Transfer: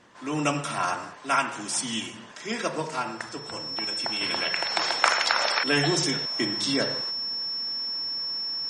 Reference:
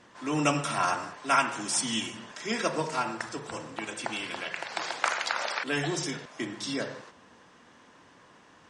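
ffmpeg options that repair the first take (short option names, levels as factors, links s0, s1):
-af "bandreject=f=5400:w=30,asetnsamples=n=441:p=0,asendcmd='4.21 volume volume -6dB',volume=1"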